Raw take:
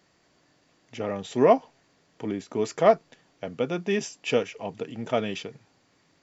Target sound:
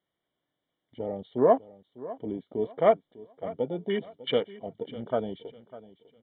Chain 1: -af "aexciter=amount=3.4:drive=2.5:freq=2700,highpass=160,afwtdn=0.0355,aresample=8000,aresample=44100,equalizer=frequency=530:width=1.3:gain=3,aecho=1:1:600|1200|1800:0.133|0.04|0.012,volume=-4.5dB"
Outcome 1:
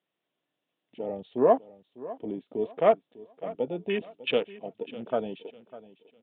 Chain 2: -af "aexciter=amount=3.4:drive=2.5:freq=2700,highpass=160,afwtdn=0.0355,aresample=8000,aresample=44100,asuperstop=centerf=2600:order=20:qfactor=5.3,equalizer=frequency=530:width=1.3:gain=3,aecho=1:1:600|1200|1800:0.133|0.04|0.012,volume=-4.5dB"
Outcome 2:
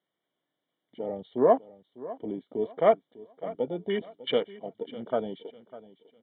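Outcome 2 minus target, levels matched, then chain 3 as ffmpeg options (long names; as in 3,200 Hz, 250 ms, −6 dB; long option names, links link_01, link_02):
125 Hz band −3.5 dB
-af "aexciter=amount=3.4:drive=2.5:freq=2700,afwtdn=0.0355,aresample=8000,aresample=44100,asuperstop=centerf=2600:order=20:qfactor=5.3,equalizer=frequency=530:width=1.3:gain=3,aecho=1:1:600|1200|1800:0.133|0.04|0.012,volume=-4.5dB"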